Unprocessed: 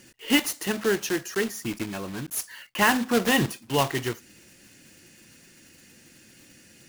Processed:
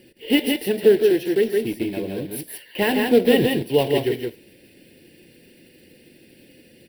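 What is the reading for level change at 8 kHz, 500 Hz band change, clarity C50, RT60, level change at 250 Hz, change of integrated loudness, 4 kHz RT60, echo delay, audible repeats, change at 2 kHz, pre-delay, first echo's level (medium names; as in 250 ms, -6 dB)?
-6.5 dB, +11.0 dB, no reverb, no reverb, +5.5 dB, +5.5 dB, no reverb, 117 ms, 2, -1.5 dB, no reverb, -17.5 dB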